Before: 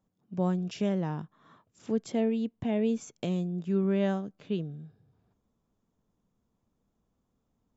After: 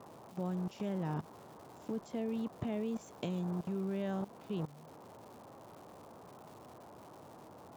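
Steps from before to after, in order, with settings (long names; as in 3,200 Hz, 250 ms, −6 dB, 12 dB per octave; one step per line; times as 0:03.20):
noise in a band 90–1,000 Hz −45 dBFS
output level in coarse steps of 18 dB
surface crackle 390 per second −50 dBFS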